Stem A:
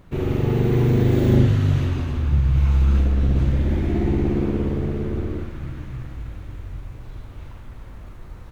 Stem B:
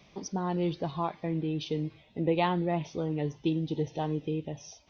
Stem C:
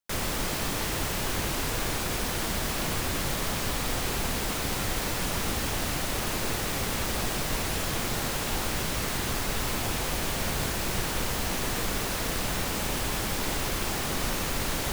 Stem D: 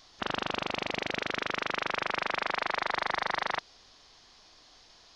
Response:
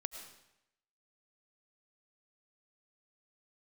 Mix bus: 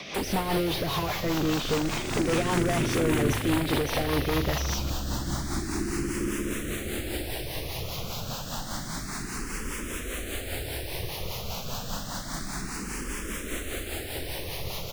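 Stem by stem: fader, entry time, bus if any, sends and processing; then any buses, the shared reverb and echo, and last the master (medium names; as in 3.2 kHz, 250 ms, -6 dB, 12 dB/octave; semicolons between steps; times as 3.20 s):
-4.0 dB, 1.85 s, no send, four-pole ladder low-pass 370 Hz, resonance 60%
-4.0 dB, 0.00 s, no send, treble shelf 3.2 kHz +11 dB; overdrive pedal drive 38 dB, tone 2 kHz, clips at -14 dBFS
+0.5 dB, 0.05 s, no send, barber-pole phaser +0.29 Hz
-2.0 dB, 1.15 s, no send, none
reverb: none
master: rotary cabinet horn 5 Hz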